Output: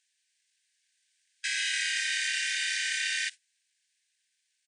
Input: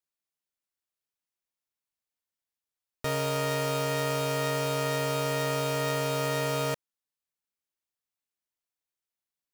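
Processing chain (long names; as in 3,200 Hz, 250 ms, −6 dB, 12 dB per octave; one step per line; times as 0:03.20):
source passing by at 0:03.70, 13 m/s, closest 10 metres
brickwall limiter −30 dBFS, peak gain reduction 10.5 dB
amplitude modulation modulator 42 Hz, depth 55%
power curve on the samples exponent 0.35
pitch-shifted copies added −5 semitones −1 dB, −4 semitones 0 dB, +4 semitones −3 dB
noise gate with hold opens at −31 dBFS
change of speed 2.04×
linear-phase brick-wall band-pass 1,500–9,700 Hz
level +5 dB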